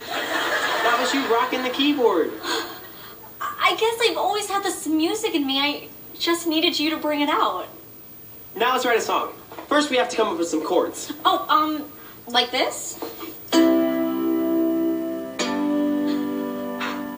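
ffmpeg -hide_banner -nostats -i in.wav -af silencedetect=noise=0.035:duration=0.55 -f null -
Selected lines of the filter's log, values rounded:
silence_start: 7.65
silence_end: 8.56 | silence_duration: 0.91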